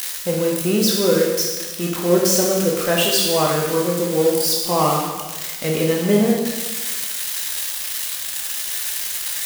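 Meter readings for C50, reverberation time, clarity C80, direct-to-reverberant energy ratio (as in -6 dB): 2.0 dB, 1.3 s, 4.0 dB, -2.5 dB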